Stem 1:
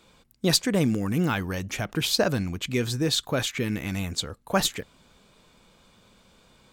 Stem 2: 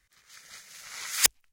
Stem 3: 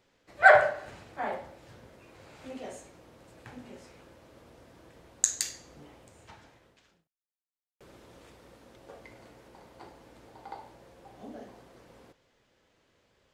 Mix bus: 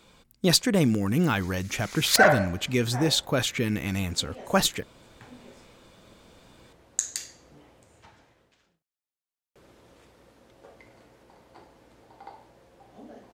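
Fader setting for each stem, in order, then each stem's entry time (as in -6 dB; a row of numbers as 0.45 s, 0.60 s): +1.0 dB, -4.5 dB, -2.0 dB; 0.00 s, 0.90 s, 1.75 s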